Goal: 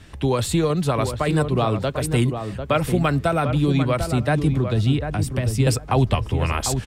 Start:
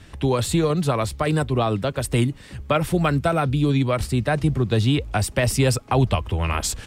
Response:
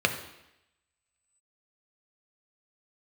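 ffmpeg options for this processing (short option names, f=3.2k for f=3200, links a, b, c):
-filter_complex "[0:a]asettb=1/sr,asplit=3[a][b][c];[a]atrim=end=4.524[d];[b]atrim=start=4.52:end=5.67,asetpts=PTS-STARTPTS,afade=t=in:d=0.004:c=qsin,afade=t=out:st=1.146:d=0.004:c=qsin,acrossover=split=330[e][f];[f]acompressor=threshold=-29dB:ratio=6[g];[e][g]amix=inputs=2:normalize=0[h];[c]atrim=start=5.666[i];[d][h]acrossfade=d=0.004:c1=hsin:c2=qsin[j];[j][i]acrossfade=d=0.004:c1=qsin:c2=hsin,asplit=2[k][l];[l]adelay=747,lowpass=f=1.5k:p=1,volume=-7dB,asplit=2[m][n];[n]adelay=747,lowpass=f=1.5k:p=1,volume=0.17,asplit=2[o][p];[p]adelay=747,lowpass=f=1.5k:p=1,volume=0.17[q];[m][o][q]amix=inputs=3:normalize=0[r];[k][r]amix=inputs=2:normalize=0"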